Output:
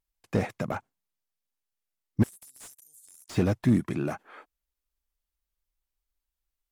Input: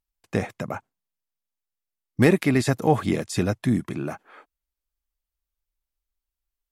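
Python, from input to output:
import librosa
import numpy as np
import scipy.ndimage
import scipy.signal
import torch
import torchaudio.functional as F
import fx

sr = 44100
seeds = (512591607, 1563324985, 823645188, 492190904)

y = fx.cheby2_highpass(x, sr, hz=2500.0, order=4, stop_db=60, at=(2.22, 3.28), fade=0.02)
y = fx.vibrato(y, sr, rate_hz=4.8, depth_cents=32.0)
y = fx.slew_limit(y, sr, full_power_hz=44.0)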